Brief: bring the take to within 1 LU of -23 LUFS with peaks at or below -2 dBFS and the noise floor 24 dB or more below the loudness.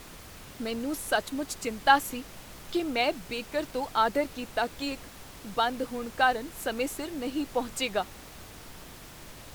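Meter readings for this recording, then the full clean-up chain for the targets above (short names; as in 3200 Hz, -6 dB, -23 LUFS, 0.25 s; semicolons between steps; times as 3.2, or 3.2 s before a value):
noise floor -47 dBFS; noise floor target -54 dBFS; loudness -29.5 LUFS; peak -7.5 dBFS; loudness target -23.0 LUFS
-> noise print and reduce 7 dB; gain +6.5 dB; limiter -2 dBFS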